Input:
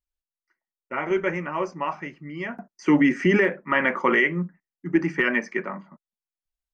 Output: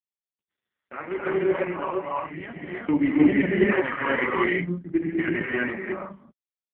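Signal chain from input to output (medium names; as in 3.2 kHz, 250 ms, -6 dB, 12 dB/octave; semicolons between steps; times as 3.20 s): gate -47 dBFS, range -15 dB; gated-style reverb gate 370 ms rising, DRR -5.5 dB; trim -5 dB; AMR-NB 4.75 kbps 8 kHz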